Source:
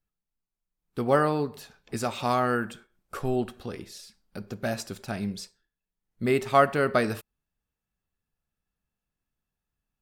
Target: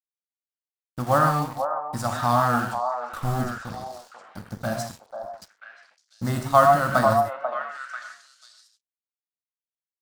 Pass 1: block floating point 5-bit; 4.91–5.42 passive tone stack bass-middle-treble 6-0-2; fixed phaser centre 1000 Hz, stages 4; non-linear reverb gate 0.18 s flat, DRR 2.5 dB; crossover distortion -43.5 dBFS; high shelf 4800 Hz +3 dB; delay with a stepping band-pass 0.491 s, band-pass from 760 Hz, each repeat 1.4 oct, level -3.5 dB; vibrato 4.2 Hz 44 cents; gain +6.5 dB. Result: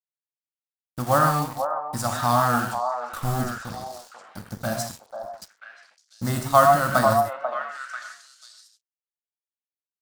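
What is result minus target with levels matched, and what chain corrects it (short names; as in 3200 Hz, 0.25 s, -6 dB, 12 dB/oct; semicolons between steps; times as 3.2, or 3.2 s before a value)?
8000 Hz band +5.5 dB
block floating point 5-bit; 4.91–5.42 passive tone stack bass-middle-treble 6-0-2; fixed phaser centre 1000 Hz, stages 4; non-linear reverb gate 0.18 s flat, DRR 2.5 dB; crossover distortion -43.5 dBFS; high shelf 4800 Hz -4.5 dB; delay with a stepping band-pass 0.491 s, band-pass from 760 Hz, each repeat 1.4 oct, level -3.5 dB; vibrato 4.2 Hz 44 cents; gain +6.5 dB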